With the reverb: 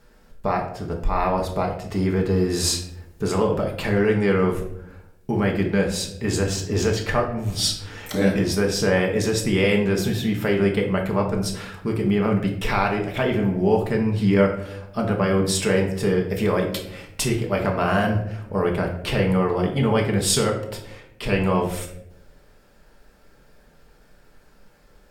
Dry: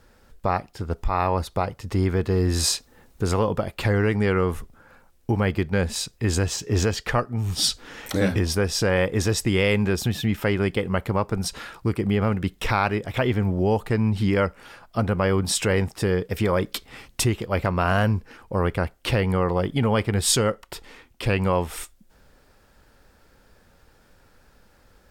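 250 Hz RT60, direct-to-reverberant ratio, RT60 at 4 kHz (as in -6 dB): 1.1 s, 0.0 dB, 0.45 s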